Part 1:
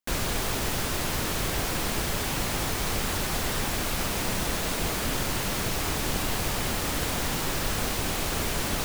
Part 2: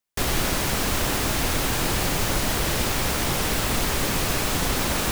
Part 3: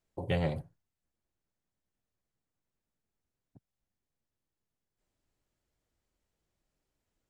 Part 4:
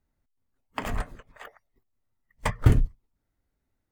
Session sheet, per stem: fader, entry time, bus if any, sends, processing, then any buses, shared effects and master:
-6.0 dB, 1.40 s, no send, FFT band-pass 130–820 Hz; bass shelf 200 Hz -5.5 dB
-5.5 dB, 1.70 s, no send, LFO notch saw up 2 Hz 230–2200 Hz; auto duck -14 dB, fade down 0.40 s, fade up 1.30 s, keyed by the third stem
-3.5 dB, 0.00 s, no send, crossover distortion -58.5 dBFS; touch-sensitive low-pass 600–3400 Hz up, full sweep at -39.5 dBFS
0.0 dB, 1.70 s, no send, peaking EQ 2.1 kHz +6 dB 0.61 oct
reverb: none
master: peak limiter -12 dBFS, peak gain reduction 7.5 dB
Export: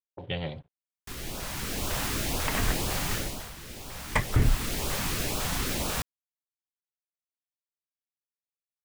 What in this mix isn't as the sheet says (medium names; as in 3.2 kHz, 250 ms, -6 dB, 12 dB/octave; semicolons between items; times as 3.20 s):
stem 1: muted; stem 2: entry 1.70 s -> 0.90 s